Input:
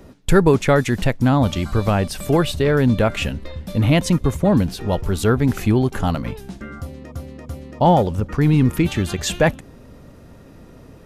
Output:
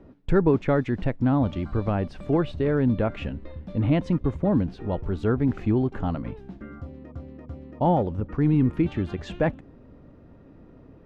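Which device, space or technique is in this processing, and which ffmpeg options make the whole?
phone in a pocket: -af "lowpass=3600,equalizer=frequency=300:width_type=o:width=0.51:gain=4.5,highshelf=frequency=2200:gain=-10.5,volume=-7dB"

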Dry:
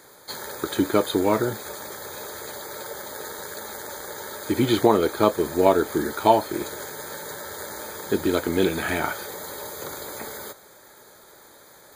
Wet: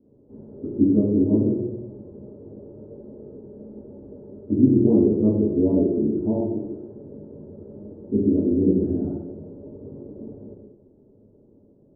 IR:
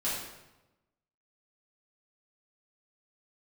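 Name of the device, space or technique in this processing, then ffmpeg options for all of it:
next room: -filter_complex "[0:a]asettb=1/sr,asplit=3[link_01][link_02][link_03];[link_01]atrim=end=6.414[link_04];[link_02]atrim=start=6.41:end=6.95,asetpts=PTS-STARTPTS,afade=type=in:duration=0.004:curve=qsin,afade=type=out:start_time=0.536:duration=0.004:curve=qsin,tiltshelf=frequency=750:gain=-6[link_05];[link_03]atrim=start=6.946[link_06];[link_04][link_05]acrossfade=duration=0.004:curve1=hsin:curve2=qsin[link_07];[link_07][link_06]acrossfade=duration=0.004:curve1=qsin:curve2=hsin,lowpass=frequency=350:width=0.5412,lowpass=frequency=350:width=1.3066[link_08];[1:a]atrim=start_sample=2205[link_09];[link_08][link_09]afir=irnorm=-1:irlink=0"

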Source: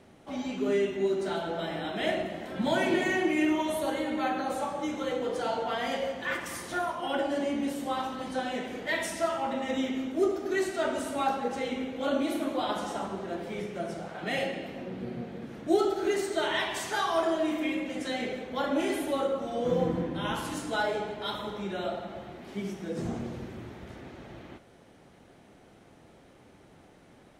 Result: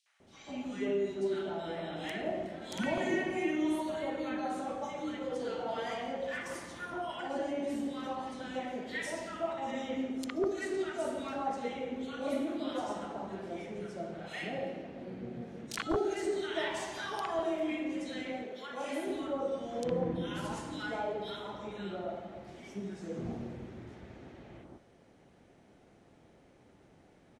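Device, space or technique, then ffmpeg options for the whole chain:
overflowing digital effects unit: -filter_complex "[0:a]asettb=1/sr,asplit=3[link_01][link_02][link_03];[link_01]atrim=end=18.224[link_04];[link_02]atrim=start=18.22:end=18.87,asetpts=PTS-STARTPTS,afade=type=in:duration=0.004:curve=qsin,afade=type=out:start_time=0.646:duration=0.004:curve=qsin,highpass=frequency=440:poles=1[link_05];[link_03]atrim=start=18.866[link_06];[link_04][link_05]acrossfade=duration=0.004:curve1=hsin:curve2=qsin[link_07];[link_07][link_06]acrossfade=duration=0.004:curve1=qsin:curve2=hsin,aeval=exprs='(mod(6.31*val(0)+1,2)-1)/6.31':channel_layout=same,lowpass=8200,acrossover=split=1200|3600[link_08][link_09][link_10];[link_09]adelay=60[link_11];[link_08]adelay=200[link_12];[link_12][link_11][link_10]amix=inputs=3:normalize=0,volume=-5dB"

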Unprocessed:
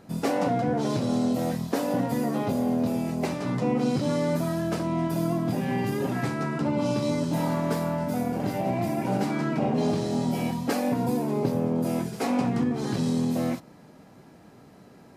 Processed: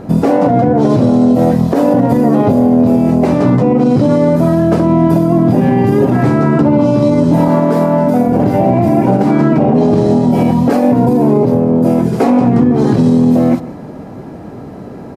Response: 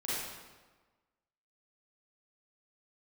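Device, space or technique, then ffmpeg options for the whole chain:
mastering chain: -filter_complex "[0:a]asettb=1/sr,asplit=3[link_01][link_02][link_03];[link_01]atrim=end=7.484[link_04];[link_02]atrim=start=7.48:end=8.28,asetpts=PTS-STARTPTS,afade=type=in:duration=0.004:curve=qsin,afade=type=out:start_time=0.796:duration=0.004:curve=qsin,highpass=170[link_05];[link_03]atrim=start=8.276[link_06];[link_04][link_05]acrossfade=duration=0.004:curve1=hsin:curve2=qsin[link_07];[link_07][link_06]acrossfade=duration=0.004:curve1=qsin:curve2=hsin,equalizer=frequency=170:width_type=o:width=0.88:gain=-3.5,aecho=1:1:150:0.0794,acompressor=threshold=-32dB:ratio=2,tiltshelf=frequency=1400:gain=8.5,alimiter=level_in=17.5dB:limit=-1dB:release=50:level=0:latency=1,volume=-1dB"

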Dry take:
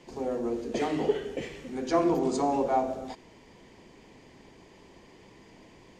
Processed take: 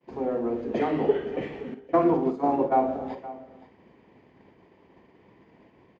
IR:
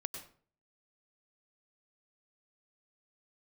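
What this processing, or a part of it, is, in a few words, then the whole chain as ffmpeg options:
hearing-loss simulation: -filter_complex "[0:a]asettb=1/sr,asplit=3[link_01][link_02][link_03];[link_01]atrim=end=1.744[link_04];[link_02]atrim=start=1.74:end=2.72,asetpts=PTS-STARTPTS,afade=type=in:duration=0.004:curve=qsin,afade=type=out:start_time=0.976:duration=0.004:curve=qsin,agate=range=-26dB:threshold=-26dB:ratio=16:detection=peak[link_05];[link_03]atrim=start=2.716[link_06];[link_04][link_05]acrossfade=duration=0.004:curve1=hsin:curve2=qsin[link_07];[link_07][link_06]acrossfade=duration=0.004:curve1=qsin:curve2=hsin,lowpass=2100,asplit=2[link_08][link_09];[link_09]adelay=50,volume=-10.5dB[link_10];[link_08][link_10]amix=inputs=2:normalize=0,agate=range=-33dB:threshold=-47dB:ratio=3:detection=peak,highpass=71,aecho=1:1:520:0.15,volume=3.5dB"

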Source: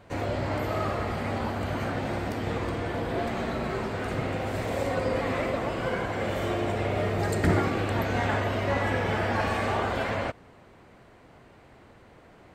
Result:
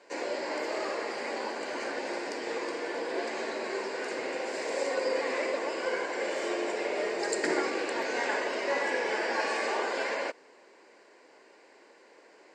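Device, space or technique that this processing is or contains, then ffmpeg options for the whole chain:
phone speaker on a table: -af "highpass=frequency=360:width=0.5412,highpass=frequency=360:width=1.3066,equalizer=frequency=710:width_type=q:width=4:gain=-8,equalizer=frequency=1200:width_type=q:width=4:gain=-4,equalizer=frequency=3400:width_type=q:width=4:gain=-7,equalizer=frequency=4900:width_type=q:width=4:gain=8,equalizer=frequency=7300:width_type=q:width=4:gain=6,lowpass=frequency=8300:width=0.5412,lowpass=frequency=8300:width=1.3066,bandreject=frequency=1300:width=7.2,volume=1dB"

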